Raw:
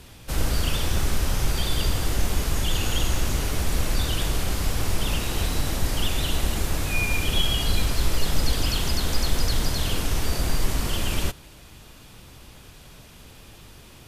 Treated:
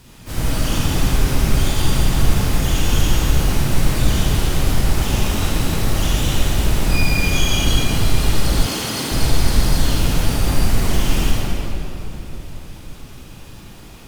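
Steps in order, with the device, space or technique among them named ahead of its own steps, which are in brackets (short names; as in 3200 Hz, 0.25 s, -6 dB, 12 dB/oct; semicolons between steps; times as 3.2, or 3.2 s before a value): shimmer-style reverb (harmoniser +12 st -4 dB; reverb RT60 3.4 s, pre-delay 33 ms, DRR -6 dB); 8.66–9.12 HPF 200 Hz 12 dB/oct; gain -2.5 dB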